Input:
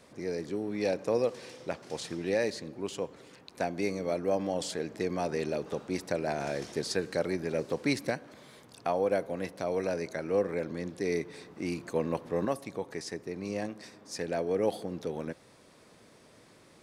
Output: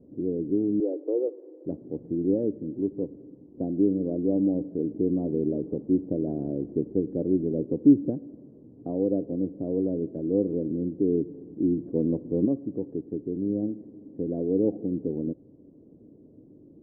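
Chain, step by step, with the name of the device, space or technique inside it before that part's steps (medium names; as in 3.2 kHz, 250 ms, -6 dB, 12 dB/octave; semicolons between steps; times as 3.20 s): under water (low-pass 420 Hz 24 dB/octave; peaking EQ 290 Hz +9 dB 0.39 oct); 0.80–1.65 s: steep high-pass 310 Hz 72 dB/octave; trim +6 dB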